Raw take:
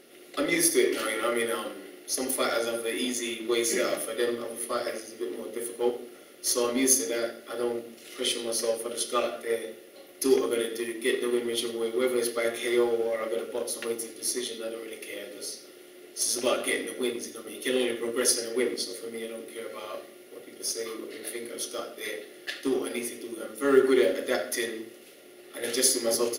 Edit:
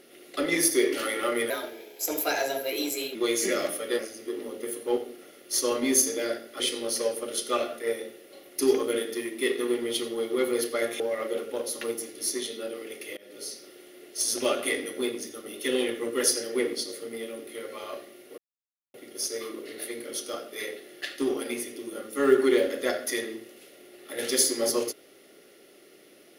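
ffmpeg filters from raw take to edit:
-filter_complex "[0:a]asplit=8[a][b][c][d][e][f][g][h];[a]atrim=end=1.504[i];[b]atrim=start=1.5:end=3.43,asetpts=PTS-STARTPTS,asetrate=51597,aresample=44100,atrim=end_sample=72746,asetpts=PTS-STARTPTS[j];[c]atrim=start=3.426:end=4.272[k];[d]atrim=start=4.918:end=7.532[l];[e]atrim=start=8.228:end=12.632[m];[f]atrim=start=13.008:end=15.18,asetpts=PTS-STARTPTS,afade=t=out:st=2.168:d=0.004:c=hsin:silence=0.0668344[n];[g]atrim=start=15.18:end=20.39,asetpts=PTS-STARTPTS,afade=t=in:d=0.41:c=qsin:silence=0.0668344,afade=t=out:st=5.206:d=0.004:c=hsin,apad=pad_dur=0.56[o];[h]atrim=start=20.39,asetpts=PTS-STARTPTS,afade=t=in:d=0.004:c=hsin[p];[i][j]acrossfade=d=0.004:c1=hsin:c2=hsin[q];[q][k]acrossfade=d=0.004:c1=hsin:c2=hsin[r];[r][l]acrossfade=d=0.004:c1=hsin:c2=hsin[s];[s][m]acrossfade=d=0.004:c1=hsin:c2=hsin[t];[n][o][p]concat=n=3:v=0:a=1[u];[t][u]acrossfade=d=0.004:c1=hsin:c2=hsin"

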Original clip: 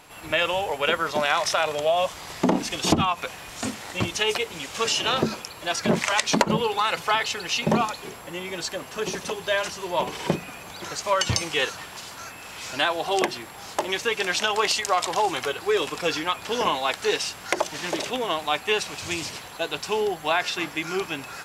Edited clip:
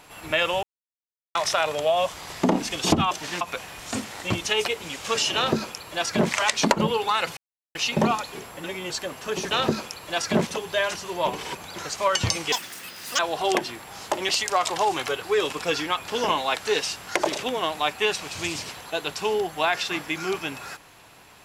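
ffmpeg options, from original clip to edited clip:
-filter_complex "[0:a]asplit=16[a][b][c][d][e][f][g][h][i][j][k][l][m][n][o][p];[a]atrim=end=0.63,asetpts=PTS-STARTPTS,afade=t=out:st=0.626:d=0.004:c=hsin[q];[b]atrim=start=0.63:end=1.35,asetpts=PTS-STARTPTS,volume=0[r];[c]atrim=start=1.35:end=3.112,asetpts=PTS-STARTPTS,afade=t=in:d=0.004:c=hsin[s];[d]atrim=start=17.618:end=17.922[t];[e]atrim=start=3.108:end=7.07,asetpts=PTS-STARTPTS,afade=t=out:st=3.958:d=0.004:c=hsin[u];[f]atrim=start=7.07:end=7.45,asetpts=PTS-STARTPTS,volume=0[v];[g]atrim=start=7.45:end=8.342,asetpts=PTS-STARTPTS,afade=t=in:d=0.004:c=hsin[w];[h]atrim=start=8.338:end=8.602,asetpts=PTS-STARTPTS,areverse[x];[i]atrim=start=8.598:end=9.212[y];[j]atrim=start=5.048:end=6.012[z];[k]atrim=start=9.208:end=10.292[aa];[l]atrim=start=10.608:end=11.584[ab];[m]atrim=start=11.58:end=12.86,asetpts=PTS-STARTPTS,asetrate=84231,aresample=44100[ac];[n]atrim=start=12.856:end=13.962[ad];[o]atrim=start=14.658:end=17.622[ae];[p]atrim=start=17.918[af];[q][r][s]concat=n=3:v=0:a=1[ag];[ag][t]acrossfade=d=0.004:c1=hsin:c2=hsin[ah];[u][v][w]concat=n=3:v=0:a=1[ai];[ah][ai]acrossfade=d=0.004:c1=hsin:c2=hsin[aj];[aj][x]acrossfade=d=0.004:c1=hsin:c2=hsin[ak];[ak][y]acrossfade=d=0.004:c1=hsin:c2=hsin[al];[al][z]acrossfade=d=0.004:c1=hsin:c2=hsin[am];[am][aa]acrossfade=d=0.004:c1=hsin:c2=hsin[an];[an][ab]acrossfade=d=0.004:c1=hsin:c2=hsin[ao];[ao][ac]acrossfade=d=0.004:c1=hsin:c2=hsin[ap];[ap][ad]acrossfade=d=0.004:c1=hsin:c2=hsin[aq];[aq][ae]acrossfade=d=0.004:c1=hsin:c2=hsin[ar];[ar][af]acrossfade=d=0.004:c1=hsin:c2=hsin"

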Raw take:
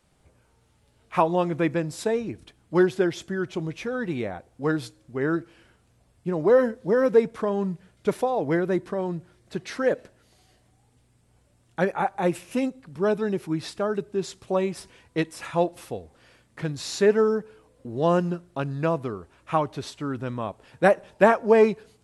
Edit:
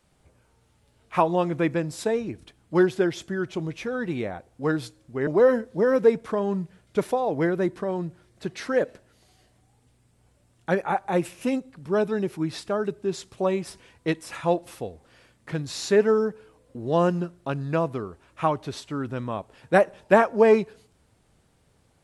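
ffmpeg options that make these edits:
-filter_complex "[0:a]asplit=2[a][b];[a]atrim=end=5.272[c];[b]atrim=start=6.368[d];[c][d]acrossfade=d=0.004:c1=hsin:c2=hsin"

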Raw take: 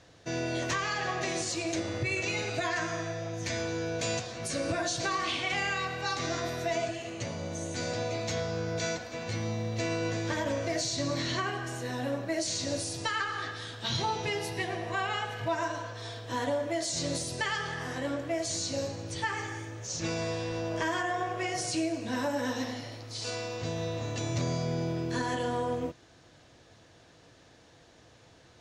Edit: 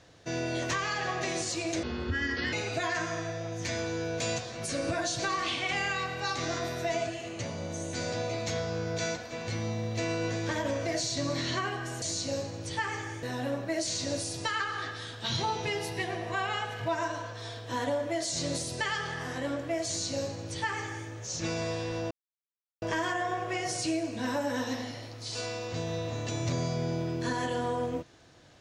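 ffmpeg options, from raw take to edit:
-filter_complex "[0:a]asplit=6[a][b][c][d][e][f];[a]atrim=end=1.834[g];[b]atrim=start=1.83:end=2.34,asetpts=PTS-STARTPTS,asetrate=32193,aresample=44100[h];[c]atrim=start=2.336:end=11.832[i];[d]atrim=start=18.468:end=19.682[j];[e]atrim=start=11.828:end=20.71,asetpts=PTS-STARTPTS,afade=t=out:st=8.878:d=0.004:c=hsin,apad=pad_dur=0.71[k];[f]atrim=start=20.71,asetpts=PTS-STARTPTS,afade=t=in:d=0.004:c=hsin[l];[g][h]acrossfade=d=0.004:c1=hsin:c2=hsin[m];[m][i]acrossfade=d=0.004:c1=hsin:c2=hsin[n];[n][j]acrossfade=d=0.004:c1=hsin:c2=hsin[o];[k][l]concat=n=2:v=0:a=1[p];[o][p]acrossfade=d=0.004:c1=hsin:c2=hsin"

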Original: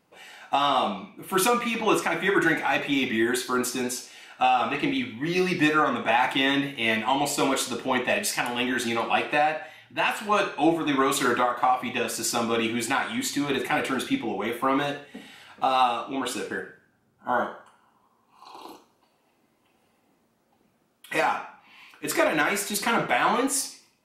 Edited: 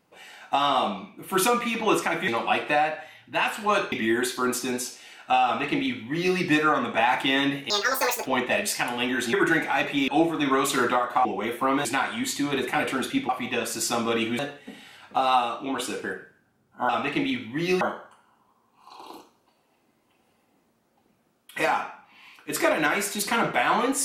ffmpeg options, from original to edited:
-filter_complex "[0:a]asplit=13[a][b][c][d][e][f][g][h][i][j][k][l][m];[a]atrim=end=2.282[n];[b]atrim=start=8.908:end=10.552[o];[c]atrim=start=3.028:end=6.814[p];[d]atrim=start=6.81:end=7.84,asetpts=PTS-STARTPTS,asetrate=81144,aresample=44100,atrim=end_sample=24686,asetpts=PTS-STARTPTS[q];[e]atrim=start=7.836:end=8.912[r];[f]atrim=start=2.278:end=3.032[s];[g]atrim=start=10.548:end=11.722[t];[h]atrim=start=14.258:end=14.862[u];[i]atrim=start=12.818:end=14.262[v];[j]atrim=start=11.718:end=12.822[w];[k]atrim=start=14.858:end=17.362[x];[l]atrim=start=4.558:end=5.482[y];[m]atrim=start=17.358[z];[n][o]acrossfade=d=0.004:c1=hsin:c2=hsin[aa];[aa][p]acrossfade=d=0.004:c1=hsin:c2=hsin[ab];[ab][q]acrossfade=d=0.004:c1=hsin:c2=hsin[ac];[ac][r]acrossfade=d=0.004:c1=hsin:c2=hsin[ad];[ad][s]acrossfade=d=0.004:c1=hsin:c2=hsin[ae];[ae][t]acrossfade=d=0.004:c1=hsin:c2=hsin[af];[af][u]acrossfade=d=0.004:c1=hsin:c2=hsin[ag];[ag][v]acrossfade=d=0.004:c1=hsin:c2=hsin[ah];[ah][w]acrossfade=d=0.004:c1=hsin:c2=hsin[ai];[ai][x]acrossfade=d=0.004:c1=hsin:c2=hsin[aj];[aj][y]acrossfade=d=0.004:c1=hsin:c2=hsin[ak];[ak][z]acrossfade=d=0.004:c1=hsin:c2=hsin"

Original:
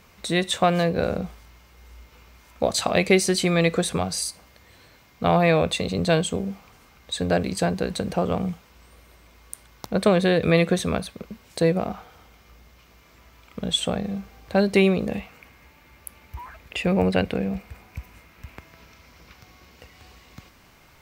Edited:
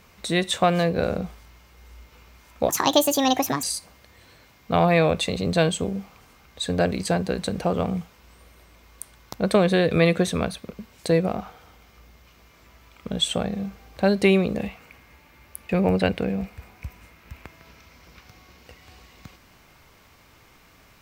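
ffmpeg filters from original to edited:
-filter_complex "[0:a]asplit=4[a][b][c][d];[a]atrim=end=2.694[e];[b]atrim=start=2.69:end=4.15,asetpts=PTS-STARTPTS,asetrate=68355,aresample=44100,atrim=end_sample=41539,asetpts=PTS-STARTPTS[f];[c]atrim=start=4.146:end=16.212[g];[d]atrim=start=16.818[h];[e][f]acrossfade=d=0.004:c1=hsin:c2=hsin[i];[i][g]acrossfade=d=0.004:c1=hsin:c2=hsin[j];[j][h]acrossfade=d=0.004:c1=hsin:c2=hsin"

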